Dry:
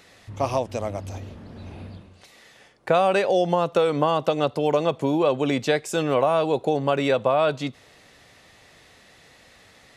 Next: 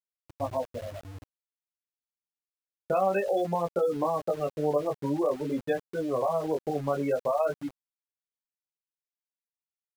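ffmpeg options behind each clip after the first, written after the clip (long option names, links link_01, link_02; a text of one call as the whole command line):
ffmpeg -i in.wav -af "afftfilt=real='re*gte(hypot(re,im),0.178)':imag='im*gte(hypot(re,im),0.178)':win_size=1024:overlap=0.75,flanger=delay=16.5:depth=4.5:speed=0.5,aeval=exprs='val(0)*gte(abs(val(0)),0.0126)':channel_layout=same,volume=-3.5dB" out.wav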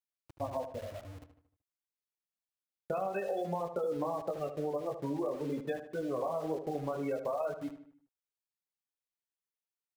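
ffmpeg -i in.wav -filter_complex "[0:a]acompressor=threshold=-27dB:ratio=6,asplit=2[link_01][link_02];[link_02]adelay=76,lowpass=frequency=3200:poles=1,volume=-9.5dB,asplit=2[link_03][link_04];[link_04]adelay=76,lowpass=frequency=3200:poles=1,volume=0.48,asplit=2[link_05][link_06];[link_06]adelay=76,lowpass=frequency=3200:poles=1,volume=0.48,asplit=2[link_07][link_08];[link_08]adelay=76,lowpass=frequency=3200:poles=1,volume=0.48,asplit=2[link_09][link_10];[link_10]adelay=76,lowpass=frequency=3200:poles=1,volume=0.48[link_11];[link_03][link_05][link_07][link_09][link_11]amix=inputs=5:normalize=0[link_12];[link_01][link_12]amix=inputs=2:normalize=0,volume=-4dB" out.wav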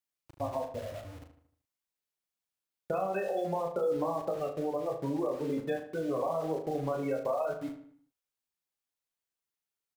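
ffmpeg -i in.wav -filter_complex "[0:a]asplit=2[link_01][link_02];[link_02]adelay=37,volume=-7dB[link_03];[link_01][link_03]amix=inputs=2:normalize=0,volume=2dB" out.wav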